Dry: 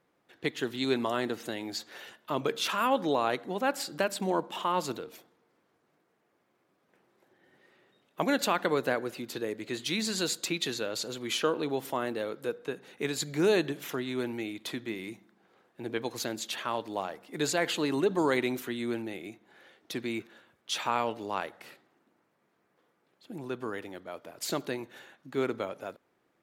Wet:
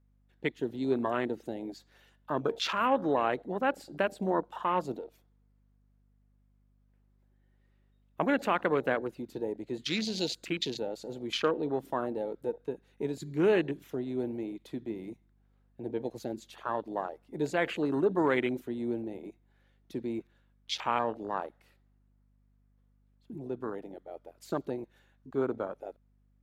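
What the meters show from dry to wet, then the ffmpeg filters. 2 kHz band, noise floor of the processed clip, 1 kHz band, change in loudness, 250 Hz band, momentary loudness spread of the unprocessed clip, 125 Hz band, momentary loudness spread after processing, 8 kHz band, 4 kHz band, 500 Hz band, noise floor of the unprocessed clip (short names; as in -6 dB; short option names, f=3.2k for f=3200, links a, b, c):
-2.5 dB, -67 dBFS, -0.5 dB, -1.0 dB, 0.0 dB, 13 LU, 0.0 dB, 14 LU, -11.5 dB, -4.5 dB, 0.0 dB, -73 dBFS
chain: -af "afwtdn=0.02,aeval=exprs='val(0)+0.000501*(sin(2*PI*50*n/s)+sin(2*PI*2*50*n/s)/2+sin(2*PI*3*50*n/s)/3+sin(2*PI*4*50*n/s)/4+sin(2*PI*5*50*n/s)/5)':c=same"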